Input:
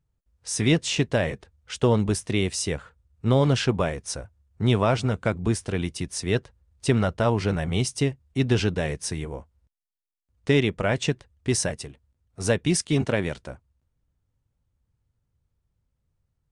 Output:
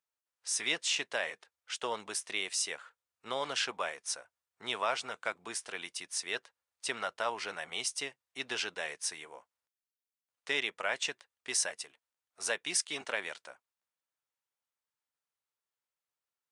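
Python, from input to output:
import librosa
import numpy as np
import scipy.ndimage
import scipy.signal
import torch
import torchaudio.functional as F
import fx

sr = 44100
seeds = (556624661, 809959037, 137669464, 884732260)

y = scipy.signal.sosfilt(scipy.signal.butter(2, 950.0, 'highpass', fs=sr, output='sos'), x)
y = F.gain(torch.from_numpy(y), -3.5).numpy()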